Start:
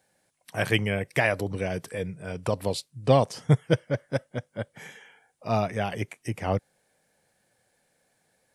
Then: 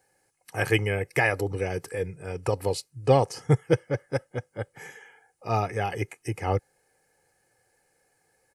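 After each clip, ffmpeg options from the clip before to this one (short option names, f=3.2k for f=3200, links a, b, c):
-af "equalizer=f=3.5k:w=4.1:g=-11,aecho=1:1:2.4:0.59"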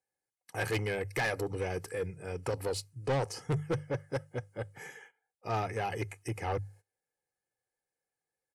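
-af "bandreject=f=50:t=h:w=6,bandreject=f=100:t=h:w=6,bandreject=f=150:t=h:w=6,agate=range=-20dB:threshold=-49dB:ratio=16:detection=peak,asoftclip=type=tanh:threshold=-23dB,volume=-3dB"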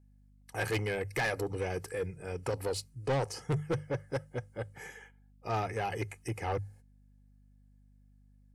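-af "aeval=exprs='val(0)+0.001*(sin(2*PI*50*n/s)+sin(2*PI*2*50*n/s)/2+sin(2*PI*3*50*n/s)/3+sin(2*PI*4*50*n/s)/4+sin(2*PI*5*50*n/s)/5)':c=same"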